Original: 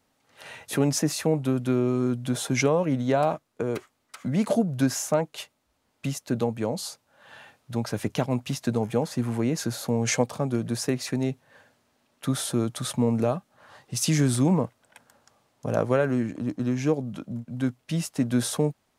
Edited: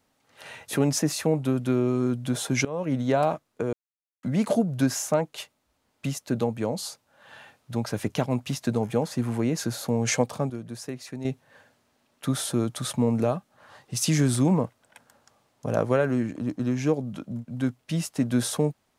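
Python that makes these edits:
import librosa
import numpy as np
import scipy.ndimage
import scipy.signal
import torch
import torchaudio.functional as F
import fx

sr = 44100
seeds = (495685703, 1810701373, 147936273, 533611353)

y = fx.edit(x, sr, fx.fade_in_from(start_s=2.65, length_s=0.31, floor_db=-20.0),
    fx.silence(start_s=3.73, length_s=0.5),
    fx.clip_gain(start_s=10.5, length_s=0.75, db=-9.0), tone=tone)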